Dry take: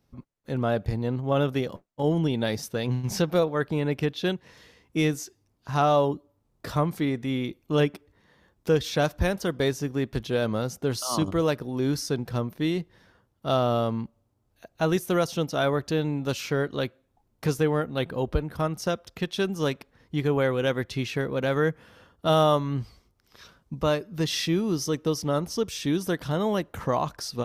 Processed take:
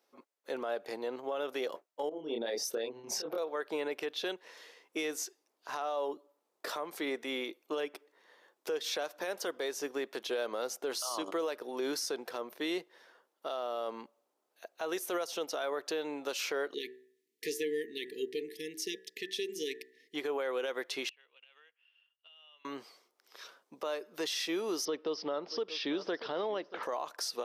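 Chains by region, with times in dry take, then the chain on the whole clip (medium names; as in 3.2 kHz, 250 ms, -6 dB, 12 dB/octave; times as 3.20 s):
2.09–3.38 s: resonances exaggerated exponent 1.5 + compressor with a negative ratio -27 dBFS, ratio -0.5 + doubling 26 ms -2 dB
16.74–20.15 s: brick-wall FIR band-stop 470–1700 Hz + de-hum 63.52 Hz, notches 31
21.09–22.65 s: band-pass filter 2.8 kHz, Q 20 + compression 16:1, threshold -55 dBFS
24.85–26.83 s: Chebyshev low-pass 5.1 kHz, order 5 + bass shelf 200 Hz +11 dB + delay 633 ms -19.5 dB
whole clip: high-pass 390 Hz 24 dB/octave; compression, threshold -28 dBFS; peak limiter -26 dBFS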